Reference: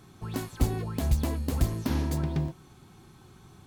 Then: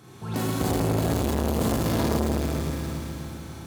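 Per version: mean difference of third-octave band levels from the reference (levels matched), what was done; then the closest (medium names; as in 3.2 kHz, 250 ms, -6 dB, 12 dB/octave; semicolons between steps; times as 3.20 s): 7.5 dB: high-pass 100 Hz 12 dB/octave; flutter echo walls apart 6.5 m, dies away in 0.23 s; Schroeder reverb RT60 3.6 s, combs from 32 ms, DRR -7.5 dB; transformer saturation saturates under 570 Hz; trim +3 dB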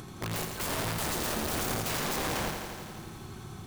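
11.5 dB: in parallel at -2.5 dB: upward compressor, threshold -29 dBFS; on the sum: feedback comb 160 Hz, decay 0.94 s, harmonics all, mix 40%; integer overflow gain 28.5 dB; bit-crushed delay 84 ms, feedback 80%, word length 10-bit, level -7 dB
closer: first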